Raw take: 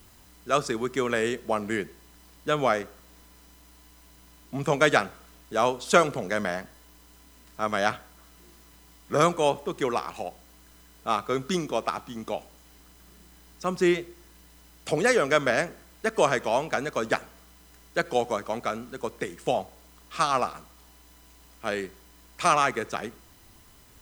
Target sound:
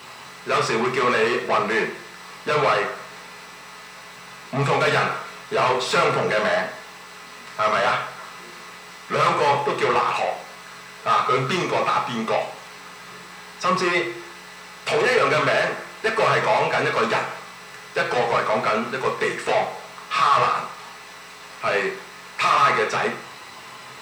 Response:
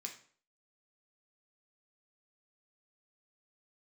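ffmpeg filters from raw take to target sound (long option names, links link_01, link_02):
-filter_complex "[0:a]asplit=2[link_01][link_02];[link_02]highpass=frequency=720:poles=1,volume=37dB,asoftclip=type=tanh:threshold=-3dB[link_03];[link_01][link_03]amix=inputs=2:normalize=0,lowpass=frequency=1300:poles=1,volume=-6dB,equalizer=frequency=125:width_type=o:width=1:gain=11,equalizer=frequency=250:width_type=o:width=1:gain=-6,equalizer=frequency=500:width_type=o:width=1:gain=5,equalizer=frequency=1000:width_type=o:width=1:gain=8,equalizer=frequency=2000:width_type=o:width=1:gain=5,equalizer=frequency=4000:width_type=o:width=1:gain=8,equalizer=frequency=8000:width_type=o:width=1:gain=3[link_04];[1:a]atrim=start_sample=2205,asetrate=48510,aresample=44100[link_05];[link_04][link_05]afir=irnorm=-1:irlink=0,volume=-7.5dB"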